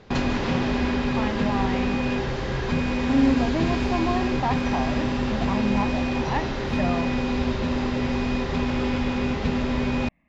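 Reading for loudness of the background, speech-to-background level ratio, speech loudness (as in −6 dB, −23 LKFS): −25.5 LKFS, −3.5 dB, −29.0 LKFS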